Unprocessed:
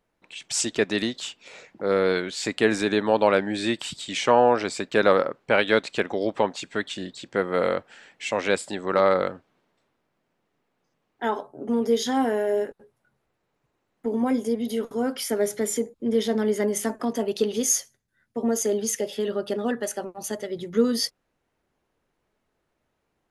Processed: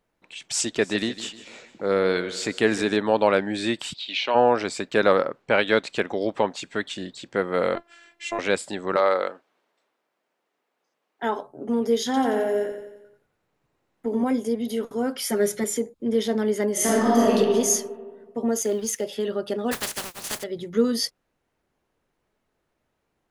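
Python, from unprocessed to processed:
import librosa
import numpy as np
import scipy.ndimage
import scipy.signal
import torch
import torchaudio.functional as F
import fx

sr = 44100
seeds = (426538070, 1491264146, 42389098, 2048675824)

y = fx.echo_feedback(x, sr, ms=152, feedback_pct=48, wet_db=-15.5, at=(0.79, 2.96), fade=0.02)
y = fx.cabinet(y, sr, low_hz=440.0, low_slope=12, high_hz=4400.0, hz=(470.0, 780.0, 1200.0, 1800.0, 2600.0, 4100.0), db=(-9, -4, -9, -7, 6, 7), at=(3.93, 4.34), fade=0.02)
y = fx.steep_lowpass(y, sr, hz=9300.0, slope=36, at=(5.42, 5.82))
y = fx.robotise(y, sr, hz=342.0, at=(7.75, 8.39))
y = fx.highpass(y, sr, hz=400.0, slope=12, at=(8.96, 11.23))
y = fx.echo_feedback(y, sr, ms=88, feedback_pct=53, wet_db=-7.0, at=(12.05, 14.24))
y = fx.comb(y, sr, ms=5.5, depth=0.91, at=(15.23, 15.64))
y = fx.reverb_throw(y, sr, start_s=16.73, length_s=0.63, rt60_s=1.6, drr_db=-9.0)
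y = fx.law_mismatch(y, sr, coded='A', at=(18.61, 19.04))
y = fx.spec_flatten(y, sr, power=0.21, at=(19.71, 20.42), fade=0.02)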